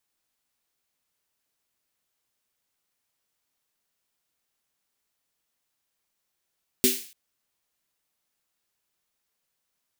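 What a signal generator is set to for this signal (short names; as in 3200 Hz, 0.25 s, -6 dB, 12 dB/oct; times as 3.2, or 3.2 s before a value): snare drum length 0.29 s, tones 250 Hz, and 380 Hz, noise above 2200 Hz, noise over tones 1 dB, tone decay 0.25 s, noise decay 0.47 s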